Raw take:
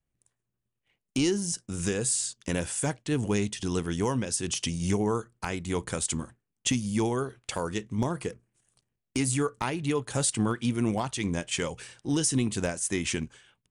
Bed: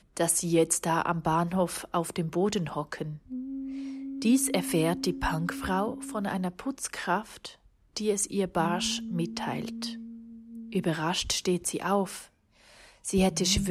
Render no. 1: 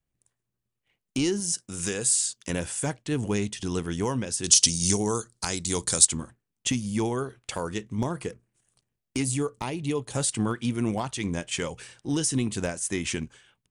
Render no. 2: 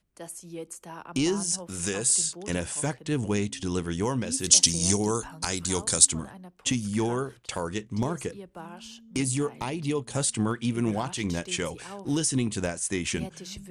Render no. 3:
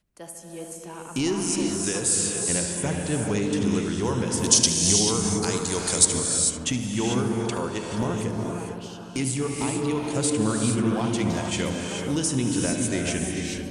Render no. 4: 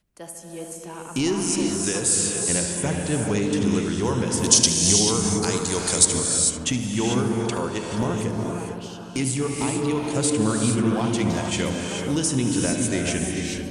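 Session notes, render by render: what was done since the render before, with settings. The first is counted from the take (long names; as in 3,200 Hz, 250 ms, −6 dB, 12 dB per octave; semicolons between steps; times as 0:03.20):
0:01.40–0:02.50: spectral tilt +1.5 dB per octave; 0:04.44–0:06.05: flat-topped bell 6,200 Hz +15.5 dB; 0:09.22–0:10.15: parametric band 1,500 Hz −9 dB
mix in bed −15 dB
feedback echo with a low-pass in the loop 74 ms, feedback 81%, low-pass 2,600 Hz, level −9 dB; reverb whose tail is shaped and stops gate 470 ms rising, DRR 2 dB
level +2 dB; brickwall limiter −1 dBFS, peak gain reduction 1 dB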